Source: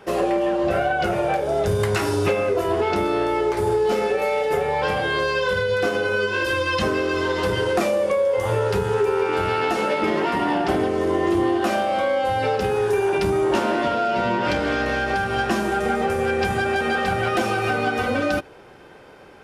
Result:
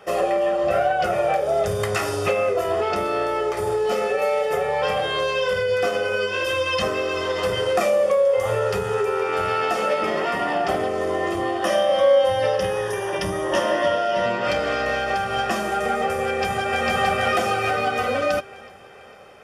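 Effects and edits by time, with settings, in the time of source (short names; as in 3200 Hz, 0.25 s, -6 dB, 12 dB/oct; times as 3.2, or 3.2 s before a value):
11.64–14.26 ripple EQ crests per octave 1.2, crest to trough 10 dB
16.27–16.87 echo throw 0.45 s, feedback 50%, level -1 dB
whole clip: low shelf 160 Hz -11.5 dB; notch 4000 Hz, Q 8.4; comb 1.6 ms, depth 52%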